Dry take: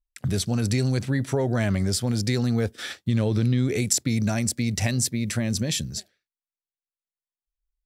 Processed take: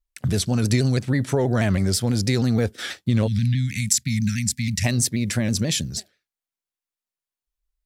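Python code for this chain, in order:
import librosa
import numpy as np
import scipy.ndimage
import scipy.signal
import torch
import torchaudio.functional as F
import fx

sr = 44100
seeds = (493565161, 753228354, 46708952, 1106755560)

y = fx.transient(x, sr, attack_db=5, sustain_db=-6, at=(0.62, 1.08))
y = fx.ellip_bandstop(y, sr, low_hz=210.0, high_hz=1800.0, order=3, stop_db=40, at=(3.26, 4.83), fade=0.02)
y = fx.vibrato_shape(y, sr, shape='saw_down', rate_hz=6.2, depth_cents=100.0)
y = y * 10.0 ** (3.0 / 20.0)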